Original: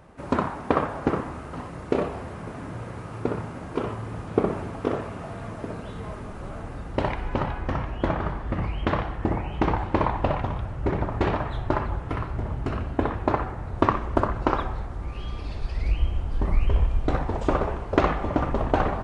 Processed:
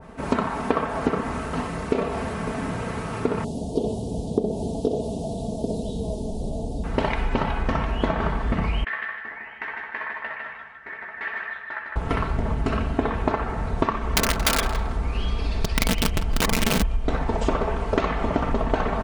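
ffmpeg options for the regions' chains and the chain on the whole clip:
-filter_complex "[0:a]asettb=1/sr,asplit=3[a][b][c];[a]atrim=end=3.444[d];[b]atrim=start=3.44:end=6.84,asetpts=PTS-STARTPTS,afade=t=in:d=0.004:c=qsin,afade=t=out:st=3.396:d=0.004:c=qsin,asuperstop=centerf=1700:order=8:qfactor=0.63,equalizer=f=1.1k:t=o:w=0.8:g=-7.5,asplit=2[e][f];[f]adelay=14,volume=-12.5dB[g];[e][g]amix=inputs=2:normalize=0,atrim=end_sample=149940[h];[c]atrim=start=6.836[i];[d][h]acrossfade=d=0.004:c1=hsin:c2=qsin[j];[j][i]acrossfade=d=0.004:c1=qsin:c2=hsin,asettb=1/sr,asplit=3[k][l][m];[k]atrim=end=8.844[n];[l]atrim=start=8.84:end=11.96,asetpts=PTS-STARTPTS,afade=t=in:d=0.004:c=qsin,afade=t=out:st=3.116:d=0.004:c=qsin,bandpass=f=1.8k:t=q:w=7.5,asplit=2[o][p];[p]adelay=14,volume=-5dB[q];[o][q]amix=inputs=2:normalize=0,atrim=end_sample=137592,aecho=1:1:156|312|468|624:0.596|0.173|0.0501|0.0145,atrim=end_sample=137592[r];[m]atrim=start=11.956[s];[n][r]acrossfade=d=0.004:c1=hsin:c2=qsin[t];[t][s]acrossfade=d=0.004:c1=qsin:c2=hsin,asettb=1/sr,asplit=3[u][v][w];[u]atrim=end=14.014[x];[v]atrim=start=14.01:end=16.82,asetpts=PTS-STARTPTS,afade=t=in:d=0.004:c=qsin,afade=t=out:st=2.806:d=0.004:c=qsin,aeval=exprs='(mod(7.94*val(0)+1,2)-1)/7.94':c=same,asplit=2[y][z];[z]adelay=162,lowpass=f=3.8k:p=1,volume=-12dB,asplit=2[aa][ab];[ab]adelay=162,lowpass=f=3.8k:p=1,volume=0.25,asplit=2[ac][ad];[ad]adelay=162,lowpass=f=3.8k:p=1,volume=0.25[ae];[y][aa][ac][ae]amix=inputs=4:normalize=0,atrim=end_sample=123921[af];[w]atrim=start=16.816[ag];[x][af]acrossfade=d=0.004:c1=hsin:c2=qsin[ah];[ah][ag]acrossfade=d=0.004:c1=qsin:c2=hsin,aecho=1:1:4.5:0.49,acompressor=threshold=-26dB:ratio=6,adynamicequalizer=threshold=0.00562:dfrequency=1800:dqfactor=0.7:tfrequency=1800:tqfactor=0.7:attack=5:release=100:ratio=0.375:range=2:mode=boostabove:tftype=highshelf,volume=7dB"

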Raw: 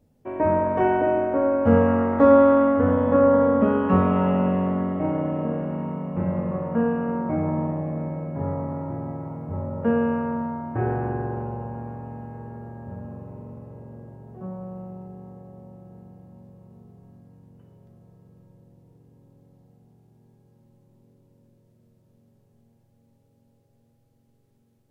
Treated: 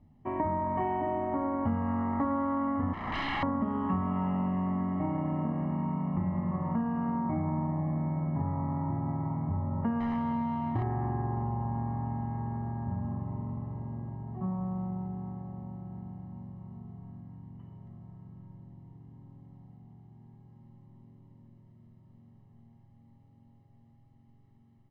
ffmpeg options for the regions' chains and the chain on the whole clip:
-filter_complex "[0:a]asettb=1/sr,asplit=3[a][b][c];[a]atrim=end=2.934[d];[b]atrim=start=2.93:end=3.43,asetpts=PTS-STARTPTS,afade=t=in:d=0.004:c=qsin,afade=t=out:st=0.496:d=0.004:c=qsin,lowshelf=f=500:g=-8,aeval=exprs='0.0473*(abs(mod(val(0)/0.0473+3,4)-2)-1)':c=same[e];[c]atrim=start=3.426[f];[d][e]acrossfade=d=0.004:c1=hsin:c2=qsin[g];[g][f]acrossfade=d=0.004:c1=qsin:c2=hsin,asettb=1/sr,asplit=3[h][i][j];[h]atrim=end=10.004[k];[i]atrim=start=10:end=10.83,asetpts=PTS-STARTPTS,afade=t=in:d=0.004:c=qsin,afade=t=out:st=0.826:d=0.004:c=qsin,adynamicsmooth=sensitivity=6:basefreq=680,aeval=exprs='0.126*(abs(mod(val(0)/0.126+3,4)-2)-1)':c=same[l];[j]atrim=start=10.826[m];[k][l]acrossfade=d=0.004:c1=hsin:c2=qsin[n];[n][m]acrossfade=d=0.004:c1=qsin:c2=hsin,lowpass=2.4k,aecho=1:1:1:0.85,acompressor=threshold=-28dB:ratio=6"

